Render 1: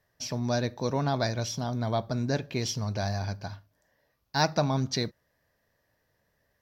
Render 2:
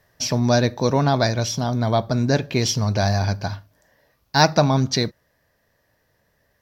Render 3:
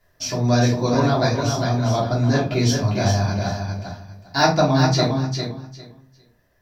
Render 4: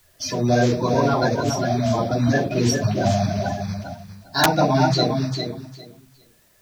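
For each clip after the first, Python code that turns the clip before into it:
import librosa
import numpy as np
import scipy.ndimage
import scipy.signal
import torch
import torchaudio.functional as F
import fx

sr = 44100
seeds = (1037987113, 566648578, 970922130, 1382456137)

y1 = fx.rider(x, sr, range_db=10, speed_s=2.0)
y1 = y1 * 10.0 ** (8.5 / 20.0)
y2 = fx.echo_feedback(y1, sr, ms=402, feedback_pct=19, wet_db=-5.5)
y2 = fx.room_shoebox(y2, sr, seeds[0], volume_m3=150.0, walls='furnished', distance_m=3.1)
y2 = y2 * 10.0 ** (-8.0 / 20.0)
y3 = fx.spec_quant(y2, sr, step_db=30)
y3 = (np.mod(10.0 ** (5.5 / 20.0) * y3 + 1.0, 2.0) - 1.0) / 10.0 ** (5.5 / 20.0)
y3 = fx.quant_dither(y3, sr, seeds[1], bits=10, dither='triangular')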